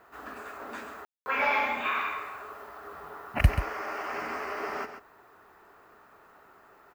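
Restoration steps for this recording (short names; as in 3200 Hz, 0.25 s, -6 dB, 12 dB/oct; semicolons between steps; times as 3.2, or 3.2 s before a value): room tone fill 1.05–1.26; inverse comb 0.134 s -9.5 dB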